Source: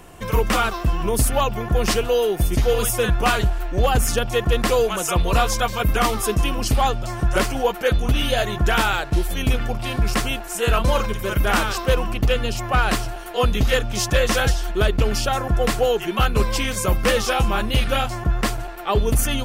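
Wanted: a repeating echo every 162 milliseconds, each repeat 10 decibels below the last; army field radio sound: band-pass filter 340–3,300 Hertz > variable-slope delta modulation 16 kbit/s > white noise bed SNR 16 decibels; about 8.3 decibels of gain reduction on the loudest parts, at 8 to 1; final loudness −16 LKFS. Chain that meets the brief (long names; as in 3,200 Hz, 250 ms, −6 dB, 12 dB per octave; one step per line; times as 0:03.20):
downward compressor 8 to 1, threshold −22 dBFS
band-pass filter 340–3,300 Hz
repeating echo 162 ms, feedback 32%, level −10 dB
variable-slope delta modulation 16 kbit/s
white noise bed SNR 16 dB
level +15 dB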